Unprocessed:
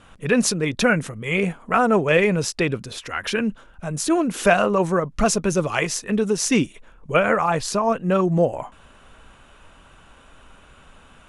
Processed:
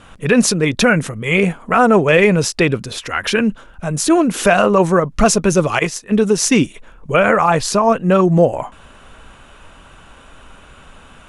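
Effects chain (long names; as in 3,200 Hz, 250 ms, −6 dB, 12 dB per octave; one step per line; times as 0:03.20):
0:05.79–0:06.60: noise gate −24 dBFS, range −11 dB
boost into a limiter +8 dB
level −1 dB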